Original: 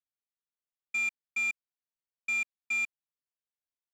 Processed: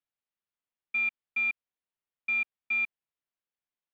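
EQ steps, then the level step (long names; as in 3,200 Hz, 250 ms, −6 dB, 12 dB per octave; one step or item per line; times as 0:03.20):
low-pass filter 3,500 Hz 24 dB per octave
+2.0 dB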